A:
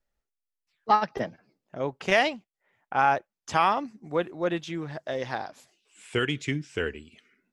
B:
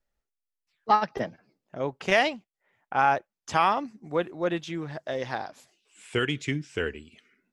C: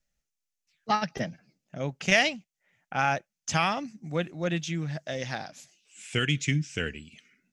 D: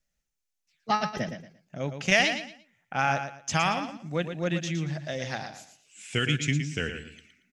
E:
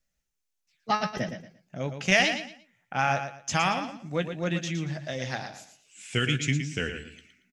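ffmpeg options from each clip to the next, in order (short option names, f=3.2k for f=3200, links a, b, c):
-af anull
-af "equalizer=f=160:t=o:w=0.67:g=8,equalizer=f=400:t=o:w=0.67:g=-7,equalizer=f=1k:t=o:w=0.67:g=-9,equalizer=f=2.5k:t=o:w=0.67:g=4,equalizer=f=6.3k:t=o:w=0.67:g=10"
-af "aecho=1:1:115|230|345:0.376|0.0977|0.0254"
-filter_complex "[0:a]asplit=2[a][b];[b]adelay=16,volume=-11.5dB[c];[a][c]amix=inputs=2:normalize=0"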